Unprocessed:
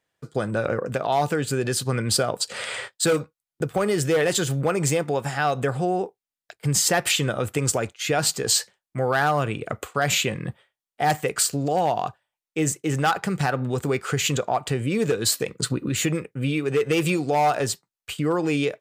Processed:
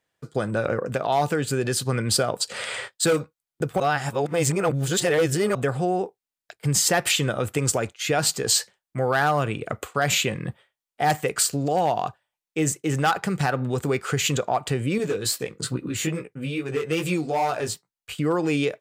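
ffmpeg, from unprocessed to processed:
-filter_complex "[0:a]asettb=1/sr,asplit=3[a][b][c];[a]atrim=end=14.984[d];[b]atrim=start=14.98:end=18.18,asetpts=PTS-STARTPTS,afade=t=in:d=0.004:c=qsin,afade=t=out:st=3.196:d=0.004:c=qsin,flanger=delay=15.5:depth=4.5:speed=2.4[e];[c]atrim=start=18.176[f];[d][e]acrossfade=d=0.004:c1=hsin:c2=qsin[g];[g][f]acrossfade=d=0.004:c1=qsin:c2=hsin,asplit=3[h][i][j];[h]atrim=end=3.802[k];[i]atrim=start=3.798:end=5.552,asetpts=PTS-STARTPTS,areverse[l];[j]atrim=start=5.548[m];[k][l]acrossfade=d=0.004:c1=hsin:c2=hsin[n];[n][m]acrossfade=d=0.004:c1=hsin:c2=hsin"

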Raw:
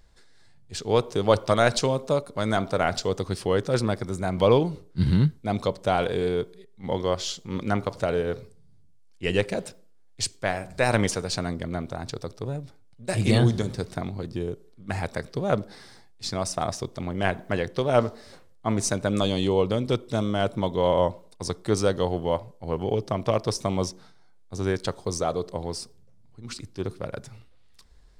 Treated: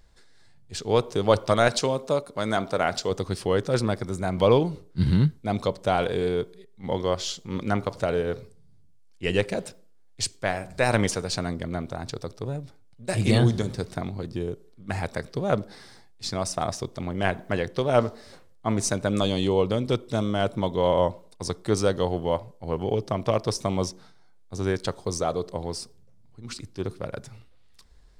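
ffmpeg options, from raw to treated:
-filter_complex "[0:a]asettb=1/sr,asplit=3[a][b][c];[a]atrim=end=1.684[d];[b]atrim=start=1.68:end=3.11,asetpts=PTS-STARTPTS,afade=t=in:d=0.004:c=qsin,afade=t=out:st=1.426:d=0.004:c=qsin,lowshelf=f=100:g=-11[e];[c]atrim=start=3.106[f];[d][e]acrossfade=d=0.004:c1=hsin:c2=qsin[g];[g][f]acrossfade=d=0.004:c1=qsin:c2=hsin"

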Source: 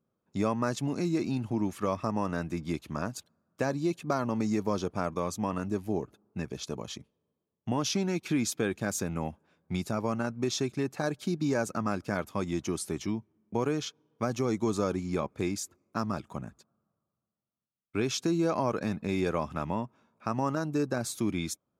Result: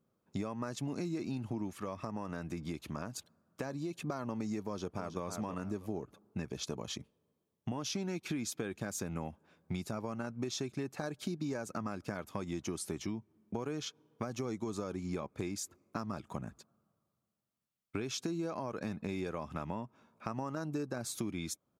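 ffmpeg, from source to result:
-filter_complex "[0:a]asplit=3[a][b][c];[a]afade=t=out:st=1.72:d=0.02[d];[b]acompressor=threshold=-44dB:ratio=1.5:attack=3.2:release=140:knee=1:detection=peak,afade=t=in:st=1.72:d=0.02,afade=t=out:st=3.96:d=0.02[e];[c]afade=t=in:st=3.96:d=0.02[f];[d][e][f]amix=inputs=3:normalize=0,asplit=2[g][h];[h]afade=t=in:st=4.62:d=0.01,afade=t=out:st=5.22:d=0.01,aecho=0:1:320|640|960:0.334965|0.0837414|0.0209353[i];[g][i]amix=inputs=2:normalize=0,alimiter=limit=-18.5dB:level=0:latency=1:release=233,acompressor=threshold=-37dB:ratio=5,volume=2dB"

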